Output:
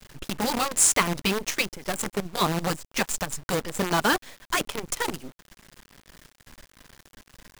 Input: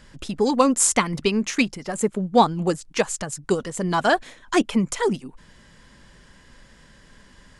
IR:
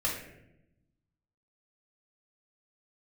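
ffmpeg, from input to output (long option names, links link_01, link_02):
-filter_complex "[0:a]asplit=3[link_01][link_02][link_03];[link_01]afade=type=out:start_time=3.05:duration=0.02[link_04];[link_02]asubboost=boost=7:cutoff=85,afade=type=in:start_time=3.05:duration=0.02,afade=type=out:start_time=3.48:duration=0.02[link_05];[link_03]afade=type=in:start_time=3.48:duration=0.02[link_06];[link_04][link_05][link_06]amix=inputs=3:normalize=0,afftfilt=real='re*lt(hypot(re,im),0.708)':imag='im*lt(hypot(re,im),0.708)':win_size=1024:overlap=0.75,acrusher=bits=5:dc=4:mix=0:aa=0.000001"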